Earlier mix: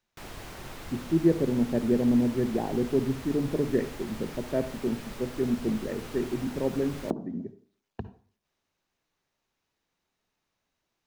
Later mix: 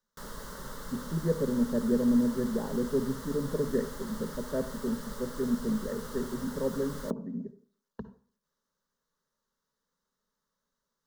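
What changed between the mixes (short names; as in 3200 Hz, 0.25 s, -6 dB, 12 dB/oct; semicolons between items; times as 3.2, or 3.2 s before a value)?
background +3.0 dB; master: add fixed phaser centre 490 Hz, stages 8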